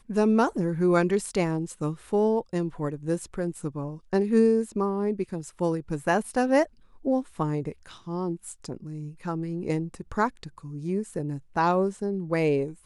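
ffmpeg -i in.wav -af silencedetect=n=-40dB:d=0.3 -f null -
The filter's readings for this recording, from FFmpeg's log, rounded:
silence_start: 6.66
silence_end: 7.05 | silence_duration: 0.39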